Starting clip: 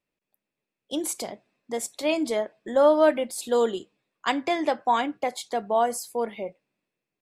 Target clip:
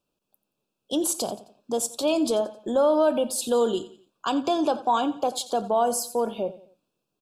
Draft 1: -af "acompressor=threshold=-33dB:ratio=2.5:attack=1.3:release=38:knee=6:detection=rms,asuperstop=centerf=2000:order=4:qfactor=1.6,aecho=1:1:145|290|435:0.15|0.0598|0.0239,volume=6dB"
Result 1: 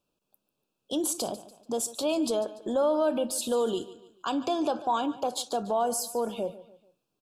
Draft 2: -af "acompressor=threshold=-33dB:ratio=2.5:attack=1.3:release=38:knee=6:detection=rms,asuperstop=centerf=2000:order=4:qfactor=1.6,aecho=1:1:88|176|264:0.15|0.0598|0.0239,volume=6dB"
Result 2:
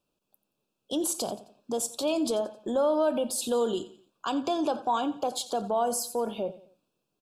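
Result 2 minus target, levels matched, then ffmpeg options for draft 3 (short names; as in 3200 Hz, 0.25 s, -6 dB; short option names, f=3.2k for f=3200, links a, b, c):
compressor: peak gain reduction +4.5 dB
-af "acompressor=threshold=-25.5dB:ratio=2.5:attack=1.3:release=38:knee=6:detection=rms,asuperstop=centerf=2000:order=4:qfactor=1.6,aecho=1:1:88|176|264:0.15|0.0598|0.0239,volume=6dB"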